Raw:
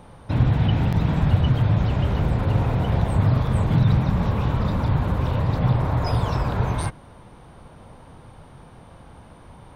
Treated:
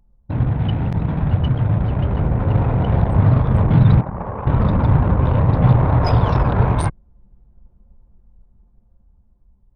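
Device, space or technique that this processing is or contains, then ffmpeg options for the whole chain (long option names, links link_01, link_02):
voice memo with heavy noise removal: -filter_complex "[0:a]asettb=1/sr,asplit=3[link_01][link_02][link_03];[link_01]atrim=end=4.014[link_04];[link_02]atrim=start=4.01:end=4.47,asetpts=PTS-STARTPTS,afade=type=in:duration=0.004:curve=qsin,afade=type=out:start_time=0.456:duration=0.004:curve=qsin,acrossover=split=390 2300:gain=0.224 1 0.224[link_05][link_06][link_07];[link_05][link_06][link_07]amix=inputs=3:normalize=0[link_08];[link_03]atrim=start=4.466[link_09];[link_04][link_08]acrossfade=duration=0.004:curve1=hsin:curve2=qsin[link_10];[link_10][link_09]acrossfade=duration=0.004:curve1=qsin:curve2=hsin,anlmdn=100,dynaudnorm=framelen=630:gausssize=7:maxgain=11.5dB"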